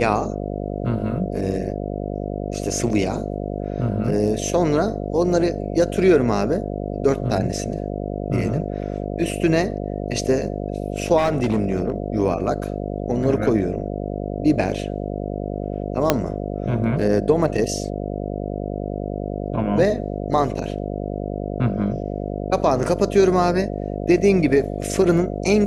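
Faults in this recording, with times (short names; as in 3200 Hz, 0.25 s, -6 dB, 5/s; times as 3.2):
buzz 50 Hz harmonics 14 -27 dBFS
11.17–11.96 clipped -14.5 dBFS
16.1 pop 0 dBFS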